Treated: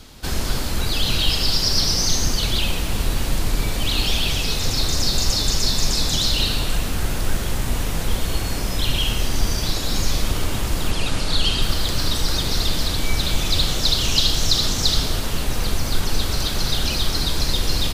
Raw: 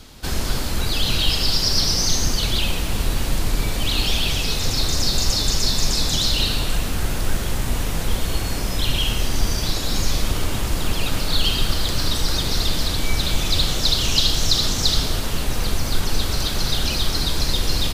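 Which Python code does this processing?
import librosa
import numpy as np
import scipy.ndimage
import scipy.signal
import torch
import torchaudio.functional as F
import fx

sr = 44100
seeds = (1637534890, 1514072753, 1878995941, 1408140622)

y = fx.lowpass(x, sr, hz=11000.0, slope=24, at=(10.91, 11.62))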